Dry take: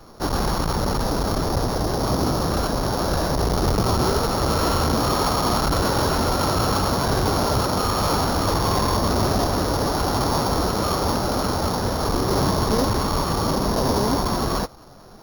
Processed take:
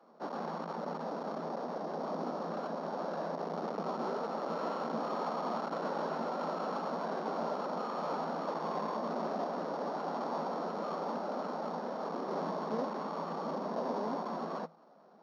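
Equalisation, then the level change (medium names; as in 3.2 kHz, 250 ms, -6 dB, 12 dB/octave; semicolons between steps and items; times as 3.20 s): rippled Chebyshev high-pass 160 Hz, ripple 6 dB; tape spacing loss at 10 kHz 29 dB; bass shelf 260 Hz -9 dB; -7.0 dB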